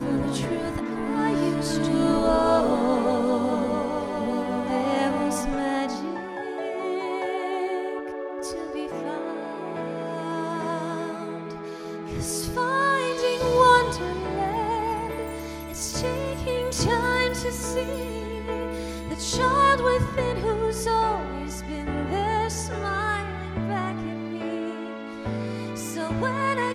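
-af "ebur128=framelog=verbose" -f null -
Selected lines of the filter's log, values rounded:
Integrated loudness:
  I:         -26.0 LUFS
  Threshold: -35.9 LUFS
Loudness range:
  LRA:         7.4 LU
  Threshold: -45.9 LUFS
  LRA low:   -30.6 LUFS
  LRA high:  -23.1 LUFS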